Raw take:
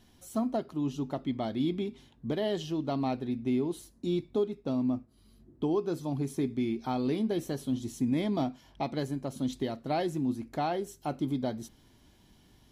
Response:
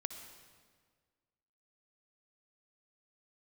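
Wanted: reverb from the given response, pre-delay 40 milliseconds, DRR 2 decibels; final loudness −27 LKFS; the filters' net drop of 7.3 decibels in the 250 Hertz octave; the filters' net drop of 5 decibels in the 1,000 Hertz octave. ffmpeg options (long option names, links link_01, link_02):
-filter_complex "[0:a]equalizer=frequency=250:width_type=o:gain=-8.5,equalizer=frequency=1000:width_type=o:gain=-7,asplit=2[link_01][link_02];[1:a]atrim=start_sample=2205,adelay=40[link_03];[link_02][link_03]afir=irnorm=-1:irlink=0,volume=-1dB[link_04];[link_01][link_04]amix=inputs=2:normalize=0,volume=8.5dB"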